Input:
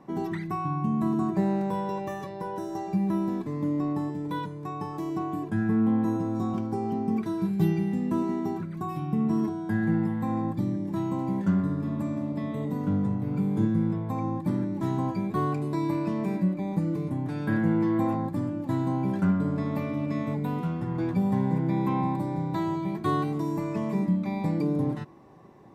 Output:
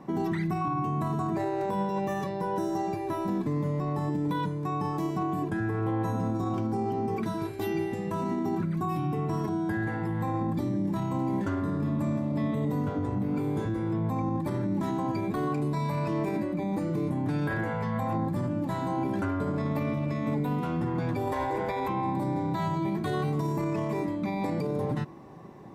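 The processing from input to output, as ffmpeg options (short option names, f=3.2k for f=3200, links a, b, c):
-filter_complex "[0:a]asettb=1/sr,asplit=3[a][b][c];[a]atrim=end=21.274[d];[b]atrim=start=21.27:end=21.88,asetpts=PTS-STARTPTS,afade=t=in:d=0.004:c=qsin,afade=t=out:st=0.606:d=0.004:c=qsin,acontrast=53[e];[c]atrim=start=21.876[f];[d][e]acrossfade=d=0.004:c1=hsin:c2=qsin[g];[g][f]acrossfade=d=0.004:c1=qsin:c2=hsin,afftfilt=real='re*lt(hypot(re,im),0.316)':imag='im*lt(hypot(re,im),0.316)':win_size=1024:overlap=0.75,equalizer=f=170:t=o:w=0.77:g=2.5,alimiter=level_in=2dB:limit=-24dB:level=0:latency=1:release=25,volume=-2dB,volume=4.5dB"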